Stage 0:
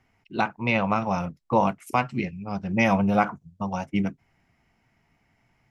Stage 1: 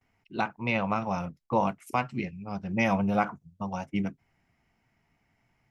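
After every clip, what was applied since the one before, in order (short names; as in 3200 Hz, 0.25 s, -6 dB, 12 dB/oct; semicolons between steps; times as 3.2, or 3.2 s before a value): gate with hold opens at -58 dBFS; gain -4.5 dB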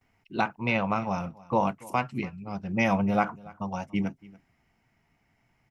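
vocal rider within 5 dB 2 s; echo 0.285 s -22 dB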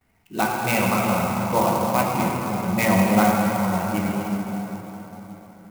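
wow and flutter 23 cents; plate-style reverb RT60 4.5 s, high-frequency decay 0.6×, DRR -3 dB; clock jitter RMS 0.041 ms; gain +2.5 dB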